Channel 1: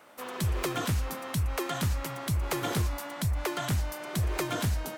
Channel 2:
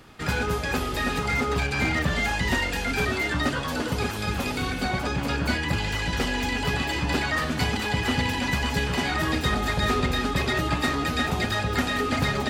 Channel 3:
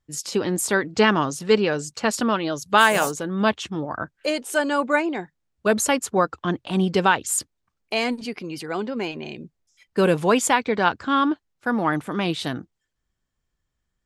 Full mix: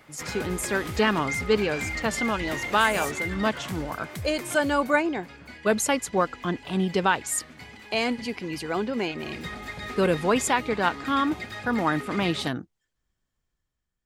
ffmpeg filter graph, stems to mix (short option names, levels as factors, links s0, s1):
-filter_complex "[0:a]volume=0.596[s0];[1:a]lowshelf=f=70:g=-8.5,volume=1.19,afade=t=out:st=3.31:d=0.79:silence=0.237137,afade=t=in:st=9.17:d=0.29:silence=0.354813[s1];[2:a]dynaudnorm=f=180:g=9:m=2.24,volume=0.447,asplit=2[s2][s3];[s3]apad=whole_len=219472[s4];[s0][s4]sidechaincompress=threshold=0.0316:ratio=8:attack=16:release=138[s5];[s5][s1]amix=inputs=2:normalize=0,equalizer=f=2100:t=o:w=0.27:g=9.5,acompressor=threshold=0.0178:ratio=1.5,volume=1[s6];[s2][s6]amix=inputs=2:normalize=0"